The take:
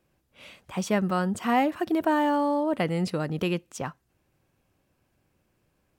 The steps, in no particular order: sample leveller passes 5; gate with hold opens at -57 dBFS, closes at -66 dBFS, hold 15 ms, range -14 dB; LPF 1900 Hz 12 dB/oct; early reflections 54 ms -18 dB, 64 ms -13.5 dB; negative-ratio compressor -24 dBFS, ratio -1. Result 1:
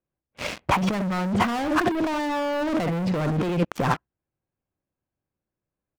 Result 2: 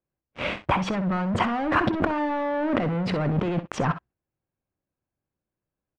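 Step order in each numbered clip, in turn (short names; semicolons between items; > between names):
LPF > gate with hold > early reflections > sample leveller > negative-ratio compressor; sample leveller > negative-ratio compressor > early reflections > gate with hold > LPF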